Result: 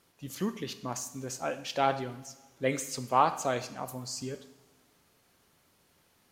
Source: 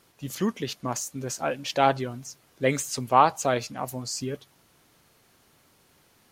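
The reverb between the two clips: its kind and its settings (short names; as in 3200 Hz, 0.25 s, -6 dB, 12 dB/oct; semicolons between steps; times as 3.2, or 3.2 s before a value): two-slope reverb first 0.81 s, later 2.5 s, from -18 dB, DRR 9.5 dB; gain -6 dB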